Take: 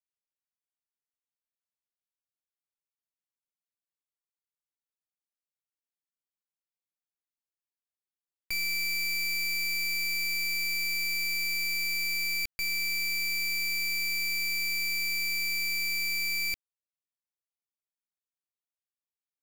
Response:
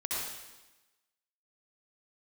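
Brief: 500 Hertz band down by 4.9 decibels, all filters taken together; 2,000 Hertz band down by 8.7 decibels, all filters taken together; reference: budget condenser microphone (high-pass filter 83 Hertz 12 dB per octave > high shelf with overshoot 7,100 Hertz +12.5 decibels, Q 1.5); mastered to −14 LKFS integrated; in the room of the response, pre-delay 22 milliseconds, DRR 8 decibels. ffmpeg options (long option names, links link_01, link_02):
-filter_complex "[0:a]equalizer=frequency=500:width_type=o:gain=-8.5,equalizer=frequency=2000:width_type=o:gain=-9,asplit=2[link_01][link_02];[1:a]atrim=start_sample=2205,adelay=22[link_03];[link_02][link_03]afir=irnorm=-1:irlink=0,volume=-13.5dB[link_04];[link_01][link_04]amix=inputs=2:normalize=0,highpass=83,highshelf=frequency=7100:width_type=q:width=1.5:gain=12.5,volume=8.5dB"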